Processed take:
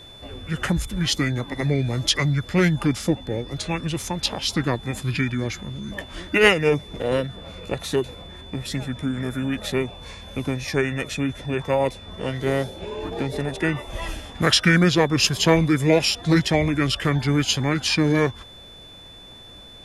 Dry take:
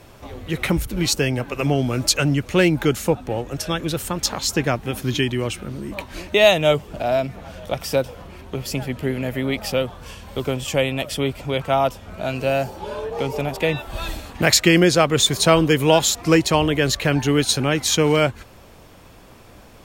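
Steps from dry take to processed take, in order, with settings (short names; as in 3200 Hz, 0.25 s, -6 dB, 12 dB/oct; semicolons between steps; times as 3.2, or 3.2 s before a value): formant shift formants -5 st; whine 3500 Hz -41 dBFS; gain -2 dB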